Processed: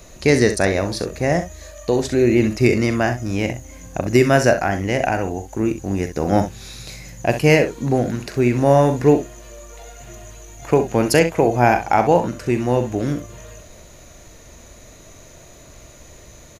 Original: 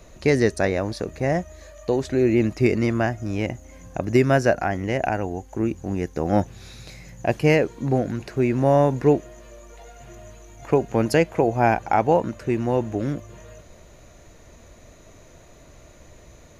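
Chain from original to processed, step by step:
high-shelf EQ 3,800 Hz +8.5 dB
on a send: ambience of single reflections 41 ms −11.5 dB, 65 ms −11 dB
on the sum: level +3 dB

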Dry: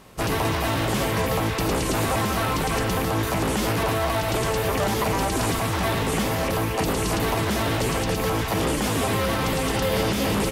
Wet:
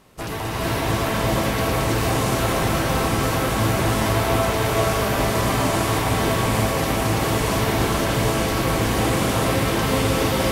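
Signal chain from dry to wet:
delay that swaps between a low-pass and a high-pass 471 ms, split 1,500 Hz, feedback 76%, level −3 dB
reverb whose tail is shaped and stops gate 500 ms rising, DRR −5 dB
level −5 dB

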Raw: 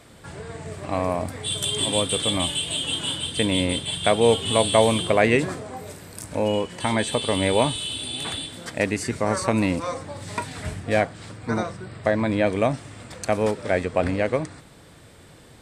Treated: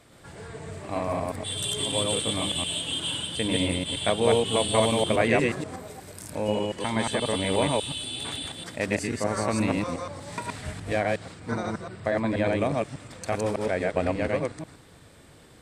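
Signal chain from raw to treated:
delay that plays each chunk backwards 120 ms, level −0.5 dB
level −6 dB

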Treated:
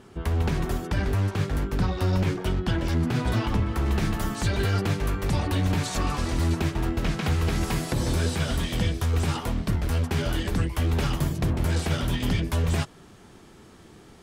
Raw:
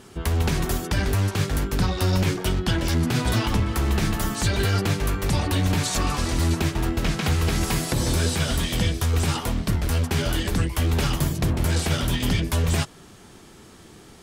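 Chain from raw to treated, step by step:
high-shelf EQ 3,400 Hz −11 dB, from 0:03.86 −6.5 dB
level −2 dB

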